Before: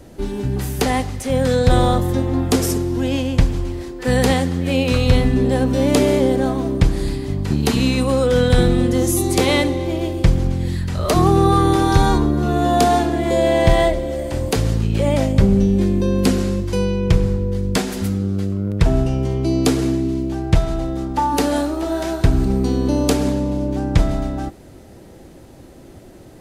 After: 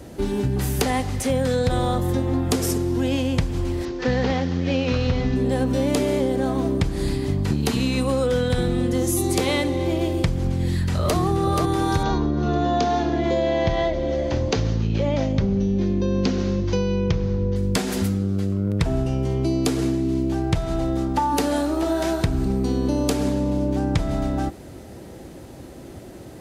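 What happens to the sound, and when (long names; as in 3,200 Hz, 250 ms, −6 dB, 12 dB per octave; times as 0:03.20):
0:03.85–0:05.36: variable-slope delta modulation 32 kbit/s
0:10.57–0:11.17: delay throw 480 ms, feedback 30%, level −1.5 dB
0:12.03–0:17.56: Chebyshev low-pass filter 6,300 Hz, order 5
whole clip: high-pass filter 44 Hz; downward compressor 5 to 1, threshold −21 dBFS; level +2.5 dB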